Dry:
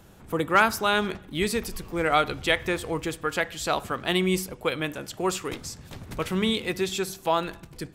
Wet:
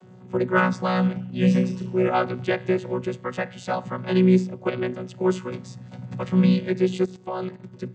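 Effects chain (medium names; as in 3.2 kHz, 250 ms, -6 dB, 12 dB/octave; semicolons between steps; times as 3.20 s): vocoder on a held chord bare fifth, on B2; 1.13–2.08 s: flutter echo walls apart 5.5 m, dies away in 0.38 s; 7.05–7.60 s: level held to a coarse grid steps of 11 dB; trim +4.5 dB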